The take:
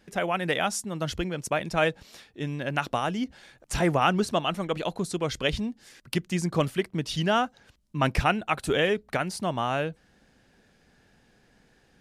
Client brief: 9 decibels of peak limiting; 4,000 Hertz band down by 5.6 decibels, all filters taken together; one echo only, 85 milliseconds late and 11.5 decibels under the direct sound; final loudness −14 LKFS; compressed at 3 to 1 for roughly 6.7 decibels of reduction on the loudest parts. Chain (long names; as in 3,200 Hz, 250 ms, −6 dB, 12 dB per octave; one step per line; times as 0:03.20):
parametric band 4,000 Hz −8.5 dB
downward compressor 3 to 1, threshold −27 dBFS
brickwall limiter −23.5 dBFS
single-tap delay 85 ms −11.5 dB
level +20.5 dB